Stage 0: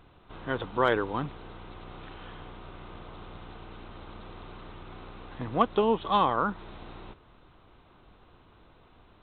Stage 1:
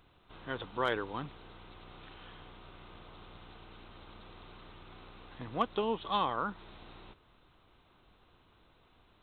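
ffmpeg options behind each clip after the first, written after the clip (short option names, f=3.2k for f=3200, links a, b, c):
-af "highshelf=f=2.6k:g=9.5,volume=-8.5dB"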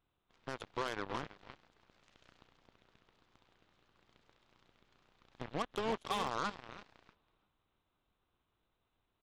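-af "alimiter=level_in=3.5dB:limit=-24dB:level=0:latency=1:release=189,volume=-3.5dB,aecho=1:1:326|652|978|1304:0.376|0.12|0.0385|0.0123,aeval=exprs='0.0473*(cos(1*acos(clip(val(0)/0.0473,-1,1)))-cos(1*PI/2))+0.0075*(cos(7*acos(clip(val(0)/0.0473,-1,1)))-cos(7*PI/2))+0.000841*(cos(8*acos(clip(val(0)/0.0473,-1,1)))-cos(8*PI/2))':c=same,volume=1.5dB"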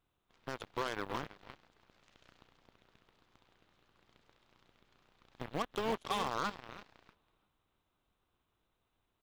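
-af "acrusher=bits=7:mode=log:mix=0:aa=0.000001,volume=1dB"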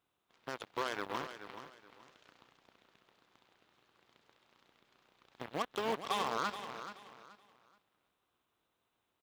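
-filter_complex "[0:a]highpass=f=270:p=1,asplit=2[a][b];[b]aecho=0:1:428|856|1284:0.282|0.0761|0.0205[c];[a][c]amix=inputs=2:normalize=0,volume=1dB"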